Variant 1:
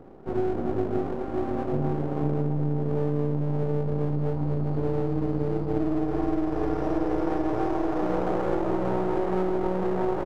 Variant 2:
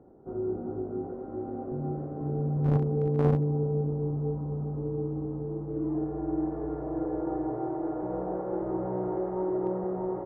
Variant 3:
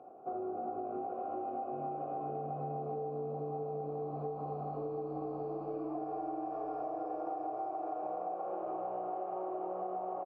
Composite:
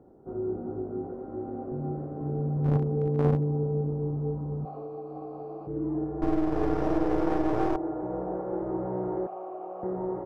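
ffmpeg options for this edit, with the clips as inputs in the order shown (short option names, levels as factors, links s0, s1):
-filter_complex "[2:a]asplit=2[s0][s1];[1:a]asplit=4[s2][s3][s4][s5];[s2]atrim=end=4.652[s6];[s0]atrim=start=4.648:end=5.672[s7];[s3]atrim=start=5.668:end=6.222[s8];[0:a]atrim=start=6.218:end=7.762[s9];[s4]atrim=start=7.758:end=9.272[s10];[s1]atrim=start=9.268:end=9.832[s11];[s5]atrim=start=9.828[s12];[s6][s7]acrossfade=d=0.004:c1=hsin:c2=hsin[s13];[s13][s8]acrossfade=d=0.004:c1=hsin:c2=hsin[s14];[s14][s9]acrossfade=d=0.004:c1=hsin:c2=hsin[s15];[s15][s10]acrossfade=d=0.004:c1=hsin:c2=hsin[s16];[s16][s11]acrossfade=d=0.004:c1=hsin:c2=hsin[s17];[s17][s12]acrossfade=d=0.004:c1=hsin:c2=hsin"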